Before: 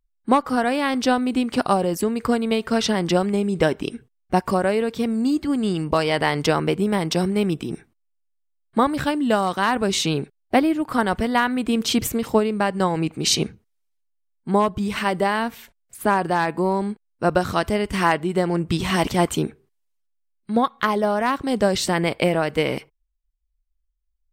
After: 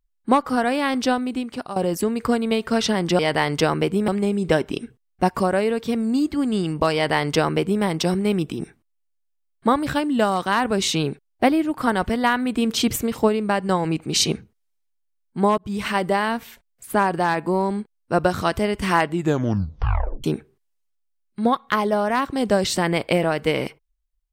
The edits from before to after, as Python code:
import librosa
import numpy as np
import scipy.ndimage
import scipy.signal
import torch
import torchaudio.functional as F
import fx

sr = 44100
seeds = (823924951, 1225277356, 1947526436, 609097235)

y = fx.edit(x, sr, fx.fade_out_to(start_s=0.96, length_s=0.8, floor_db=-15.0),
    fx.duplicate(start_s=6.05, length_s=0.89, to_s=3.19),
    fx.fade_in_span(start_s=14.69, length_s=0.28, curve='qsin'),
    fx.tape_stop(start_s=18.22, length_s=1.13), tone=tone)